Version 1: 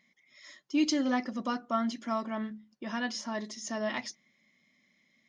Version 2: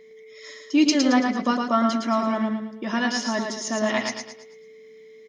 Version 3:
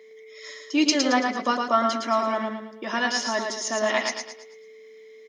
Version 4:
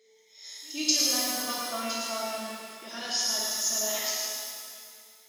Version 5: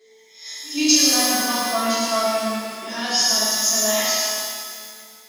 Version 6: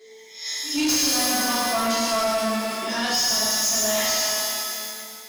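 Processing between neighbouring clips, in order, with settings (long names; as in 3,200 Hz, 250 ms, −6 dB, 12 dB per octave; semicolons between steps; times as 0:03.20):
steady tone 440 Hz −55 dBFS; on a send: repeating echo 111 ms, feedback 40%, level −4.5 dB; on the sum: level +8.5 dB
high-pass filter 370 Hz 12 dB per octave; level +1.5 dB
octave-band graphic EQ 250/500/1,000/2,000/4,000/8,000 Hz −11/−4/−10/−9/+3/+8 dB; echo ahead of the sound 114 ms −23.5 dB; reverb with rising layers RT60 2 s, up +12 semitones, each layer −8 dB, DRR −4.5 dB; level −7.5 dB
in parallel at −10 dB: soft clipping −20.5 dBFS, distortion −16 dB; on the sum: rectangular room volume 170 cubic metres, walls furnished, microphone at 3.7 metres
in parallel at −0.5 dB: downward compressor, threshold −28 dBFS, peak gain reduction 16 dB; on the sum: soft clipping −18.5 dBFS, distortion −9 dB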